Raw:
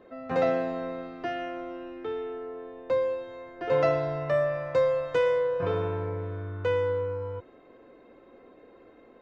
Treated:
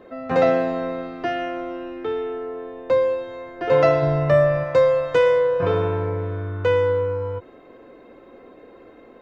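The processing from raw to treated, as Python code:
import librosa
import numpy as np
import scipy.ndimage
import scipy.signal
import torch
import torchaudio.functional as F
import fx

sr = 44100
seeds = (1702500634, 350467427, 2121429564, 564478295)

y = fx.low_shelf(x, sr, hz=250.0, db=9.0, at=(4.02, 4.64))
y = fx.end_taper(y, sr, db_per_s=480.0)
y = F.gain(torch.from_numpy(y), 7.5).numpy()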